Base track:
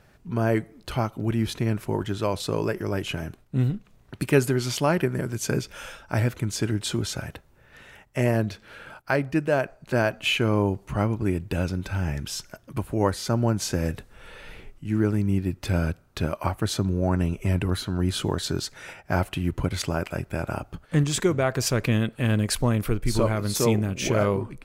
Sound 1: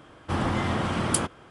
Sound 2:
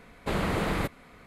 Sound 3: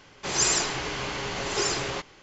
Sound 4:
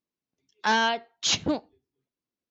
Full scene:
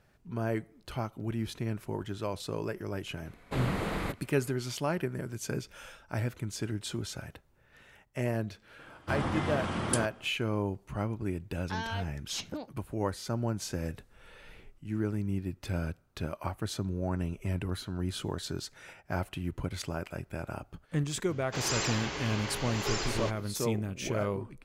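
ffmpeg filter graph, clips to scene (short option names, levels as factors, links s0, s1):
-filter_complex "[0:a]volume=0.355[s0];[4:a]acompressor=threshold=0.0631:ratio=6:attack=3.2:release=140:knee=1:detection=peak[s1];[3:a]acrossover=split=5300[s2][s3];[s3]acompressor=threshold=0.0158:ratio=4:attack=1:release=60[s4];[s2][s4]amix=inputs=2:normalize=0[s5];[2:a]atrim=end=1.26,asetpts=PTS-STARTPTS,volume=0.562,afade=t=in:d=0.004:c=hsin,afade=t=out:st=1.256:d=0.004:c=hsin,adelay=143325S[s6];[1:a]atrim=end=1.5,asetpts=PTS-STARTPTS,volume=0.501,afade=t=in:d=0.004:c=hsin,afade=t=out:st=1.496:d=0.004:c=hsin,adelay=8790[s7];[s1]atrim=end=2.5,asetpts=PTS-STARTPTS,volume=0.355,afade=t=in:d=0.004:c=hsin,afade=t=out:st=2.496:d=0.004:c=hsin,adelay=487746S[s8];[s5]atrim=end=2.22,asetpts=PTS-STARTPTS,volume=0.531,afade=t=in:d=0.004:c=hsin,afade=t=out:st=2.216:d=0.004:c=hsin,adelay=21290[s9];[s0][s6][s7][s8][s9]amix=inputs=5:normalize=0"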